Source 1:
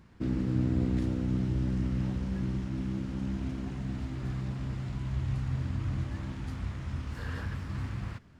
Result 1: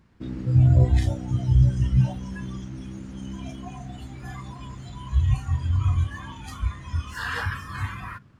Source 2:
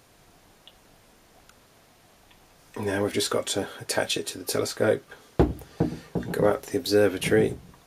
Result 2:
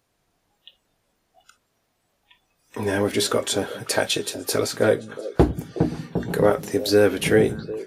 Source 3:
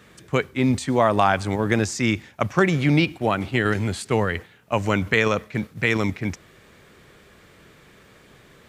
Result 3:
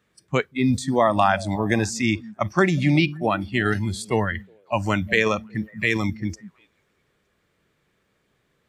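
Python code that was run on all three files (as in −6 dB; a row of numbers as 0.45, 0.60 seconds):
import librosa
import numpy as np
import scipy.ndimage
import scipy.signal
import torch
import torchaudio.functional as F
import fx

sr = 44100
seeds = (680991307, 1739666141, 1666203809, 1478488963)

y = fx.echo_stepped(x, sr, ms=183, hz=170.0, octaves=1.4, feedback_pct=70, wet_db=-10)
y = fx.noise_reduce_blind(y, sr, reduce_db=18)
y = y * 10.0 ** (-24 / 20.0) / np.sqrt(np.mean(np.square(y)))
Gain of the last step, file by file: +15.5, +3.5, 0.0 decibels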